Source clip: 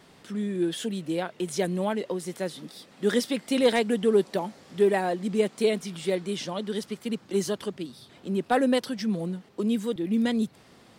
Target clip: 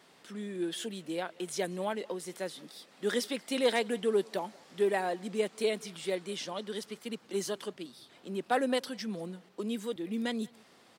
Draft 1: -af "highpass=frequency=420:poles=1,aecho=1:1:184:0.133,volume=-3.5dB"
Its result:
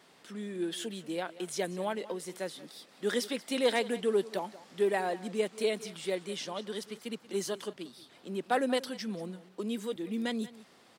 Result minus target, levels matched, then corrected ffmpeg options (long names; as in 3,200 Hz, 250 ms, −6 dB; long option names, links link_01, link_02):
echo-to-direct +8 dB
-af "highpass=frequency=420:poles=1,aecho=1:1:184:0.0531,volume=-3.5dB"